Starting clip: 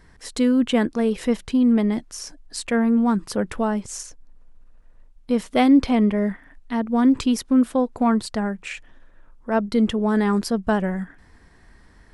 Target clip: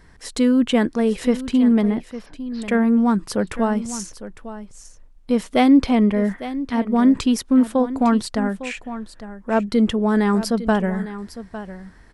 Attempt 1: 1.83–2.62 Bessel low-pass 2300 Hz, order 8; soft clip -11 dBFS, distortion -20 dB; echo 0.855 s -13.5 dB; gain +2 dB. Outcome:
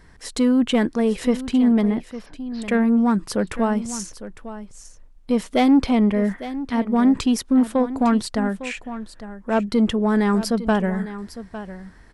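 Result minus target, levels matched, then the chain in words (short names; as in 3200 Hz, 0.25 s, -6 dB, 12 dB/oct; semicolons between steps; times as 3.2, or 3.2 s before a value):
soft clip: distortion +16 dB
1.83–2.62 Bessel low-pass 2300 Hz, order 8; soft clip -1.5 dBFS, distortion -36 dB; echo 0.855 s -13.5 dB; gain +2 dB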